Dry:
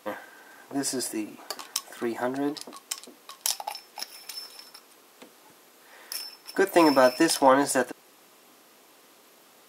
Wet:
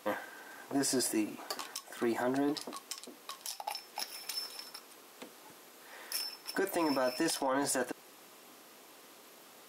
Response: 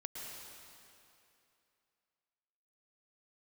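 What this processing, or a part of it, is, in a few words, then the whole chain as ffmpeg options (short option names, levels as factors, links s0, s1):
stacked limiters: -af "alimiter=limit=0.251:level=0:latency=1:release=436,alimiter=limit=0.15:level=0:latency=1:release=201,alimiter=limit=0.0708:level=0:latency=1:release=12"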